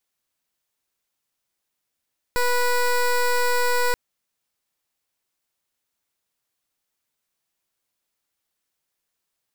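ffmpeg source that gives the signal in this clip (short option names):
-f lavfi -i "aevalsrc='0.1*(2*lt(mod(490*t,1),0.15)-1)':d=1.58:s=44100"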